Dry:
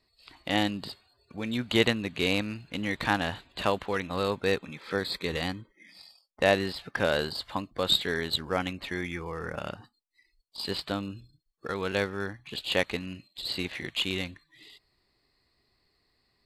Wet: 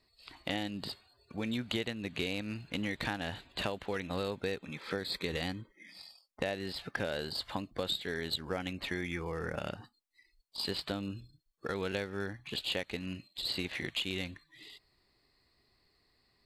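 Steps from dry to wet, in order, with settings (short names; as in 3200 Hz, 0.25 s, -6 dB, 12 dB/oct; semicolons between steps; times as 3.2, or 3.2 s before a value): dynamic EQ 1100 Hz, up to -6 dB, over -46 dBFS, Q 2.4; compressor 12:1, threshold -31 dBFS, peak gain reduction 14.5 dB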